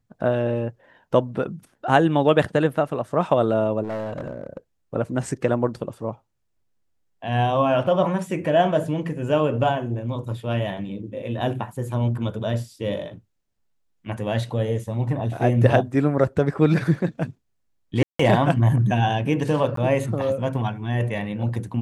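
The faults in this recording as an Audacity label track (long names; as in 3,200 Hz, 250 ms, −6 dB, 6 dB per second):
3.830000	4.570000	clipping −25.5 dBFS
18.030000	18.190000	drop-out 164 ms
19.760000	19.770000	drop-out 13 ms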